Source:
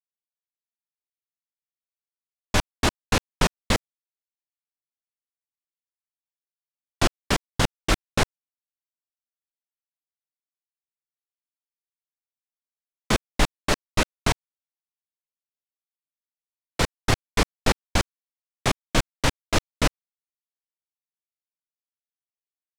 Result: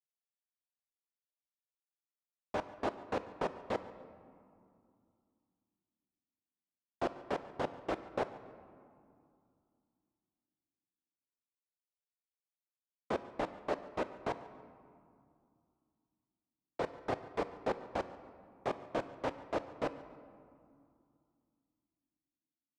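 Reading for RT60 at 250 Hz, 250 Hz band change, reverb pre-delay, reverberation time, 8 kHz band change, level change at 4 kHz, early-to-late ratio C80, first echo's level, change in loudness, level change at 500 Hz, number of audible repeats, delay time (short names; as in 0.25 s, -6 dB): 3.3 s, -13.5 dB, 3 ms, 2.5 s, under -30 dB, -25.0 dB, 13.5 dB, -20.5 dB, -13.5 dB, -7.0 dB, 1, 0.142 s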